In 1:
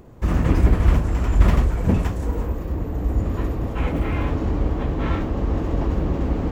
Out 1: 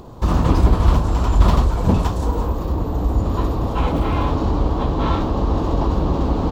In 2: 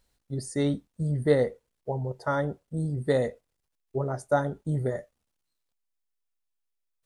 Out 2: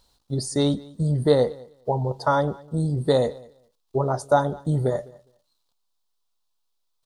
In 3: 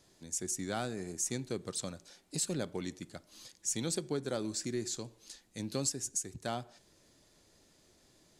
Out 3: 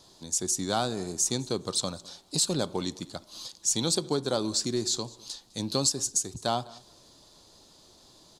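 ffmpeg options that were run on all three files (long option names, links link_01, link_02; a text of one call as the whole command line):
ffmpeg -i in.wav -filter_complex "[0:a]equalizer=frequency=1000:width_type=o:width=1:gain=9,equalizer=frequency=2000:width_type=o:width=1:gain=-10,equalizer=frequency=4000:width_type=o:width=1:gain=10,asplit=2[link_01][link_02];[link_02]acompressor=threshold=-26dB:ratio=6,volume=0dB[link_03];[link_01][link_03]amix=inputs=2:normalize=0,aecho=1:1:205|410:0.0708|0.0113" out.wav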